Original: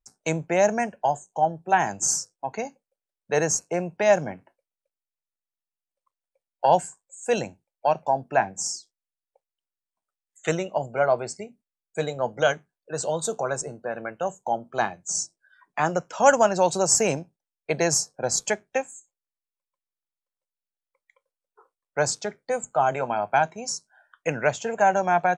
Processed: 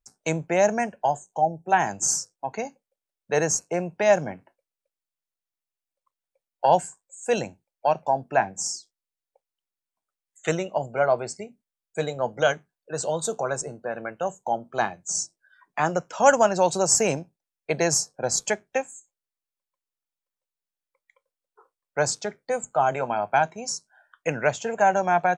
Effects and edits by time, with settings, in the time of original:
1.41–1.67 spectral delete 890–5400 Hz

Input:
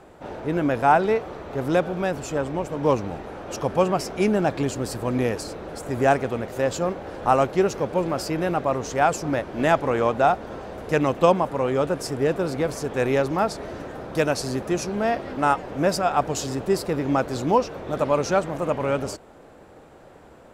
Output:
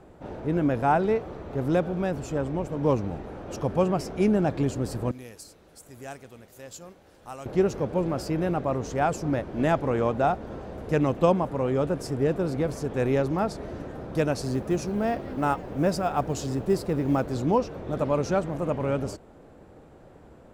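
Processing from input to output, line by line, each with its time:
5.11–7.46 pre-emphasis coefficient 0.9
14.41–17.33 short-mantissa float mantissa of 4-bit
whole clip: low shelf 410 Hz +10 dB; gain -7.5 dB

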